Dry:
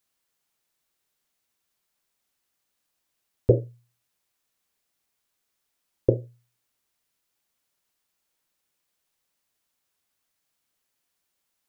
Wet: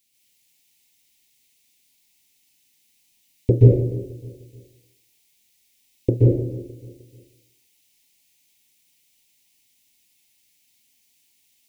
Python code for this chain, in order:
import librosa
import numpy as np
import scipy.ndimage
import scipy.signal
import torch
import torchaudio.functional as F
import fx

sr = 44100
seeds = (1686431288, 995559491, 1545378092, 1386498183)

y = fx.curve_eq(x, sr, hz=(110.0, 260.0, 590.0, 880.0, 1200.0, 2200.0), db=(0, 4, -11, -4, -28, 7))
y = fx.echo_feedback(y, sr, ms=306, feedback_pct=39, wet_db=-18.0)
y = fx.rev_plate(y, sr, seeds[0], rt60_s=0.84, hf_ratio=0.75, predelay_ms=115, drr_db=-5.0)
y = y * librosa.db_to_amplitude(2.5)